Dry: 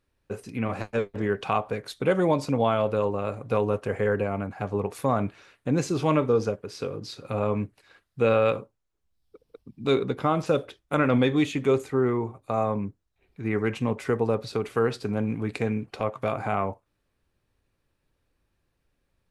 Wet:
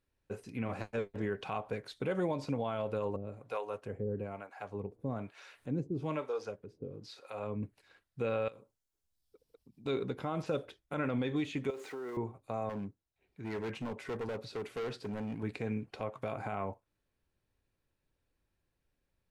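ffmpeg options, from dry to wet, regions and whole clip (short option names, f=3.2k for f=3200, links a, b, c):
-filter_complex "[0:a]asettb=1/sr,asplit=3[a][b][c];[a]atrim=end=3.164[d];[b]atrim=start=3.16:end=7.63,asetpts=PTS-STARTPTS,afade=t=in:d=0.004:c=qsin,afade=t=out:st=4.466:d=0.004:c=qsin,acompressor=mode=upward:threshold=-35dB:ratio=2.5:attack=3.2:release=140:knee=2.83:detection=peak,acrossover=split=470[e][f];[e]aeval=exprs='val(0)*(1-1/2+1/2*cos(2*PI*1.1*n/s))':c=same[g];[f]aeval=exprs='val(0)*(1-1/2-1/2*cos(2*PI*1.1*n/s))':c=same[h];[g][h]amix=inputs=2:normalize=0[i];[c]atrim=start=7.626[j];[d][i]acrossfade=d=0.004:c1=hsin:c2=qsin[k];[k][j]acrossfade=d=0.004:c1=qsin:c2=hsin,asettb=1/sr,asplit=3[l][m][n];[l]atrim=end=8.484[o];[m]atrim=start=8.48:end=9.86,asetpts=PTS-STARTPTS,afade=t=in:d=0.004:c=qsin,afade=t=out:st=1.376:d=0.004:c=qsin,bass=f=250:g=-2,treble=f=4k:g=9,acompressor=threshold=-49dB:ratio=2.5:attack=3.2:release=140:knee=1:detection=peak[p];[n]atrim=start=9.856[q];[o][p]acrossfade=d=0.004:c1=hsin:c2=qsin[r];[r][q]acrossfade=d=0.004:c1=qsin:c2=hsin,asettb=1/sr,asplit=3[s][t][u];[s]atrim=end=11.704[v];[t]atrim=start=11.7:end=12.17,asetpts=PTS-STARTPTS,afade=t=in:d=0.004:c=qsin,afade=t=out:st=0.466:d=0.004:c=qsin,aeval=exprs='val(0)+0.5*0.0126*sgn(val(0))':c=same,highpass=400,acompressor=threshold=-29dB:ratio=10:attack=3.2:release=140:knee=1:detection=peak[w];[u]atrim=start=12.166[x];[v][w]acrossfade=d=0.004:c1=hsin:c2=qsin[y];[y][x]acrossfade=d=0.004:c1=qsin:c2=hsin,asettb=1/sr,asplit=3[z][aa][ab];[z]atrim=end=12.694[ac];[aa]atrim=start=12.69:end=15.43,asetpts=PTS-STARTPTS,afade=t=in:d=0.004:c=qsin,afade=t=out:st=2.736:d=0.004:c=qsin,lowshelf=f=62:g=-10.5,volume=27dB,asoftclip=hard,volume=-27dB[ad];[ab]atrim=start=15.426[ae];[ac][ad]acrossfade=d=0.004:c1=hsin:c2=qsin[af];[af][ae]acrossfade=d=0.004:c1=qsin:c2=hsin,acrossover=split=5500[ag][ah];[ah]acompressor=threshold=-53dB:ratio=4:attack=1:release=60[ai];[ag][ai]amix=inputs=2:normalize=0,bandreject=f=1.2k:w=15,alimiter=limit=-17dB:level=0:latency=1:release=86,volume=-7.5dB"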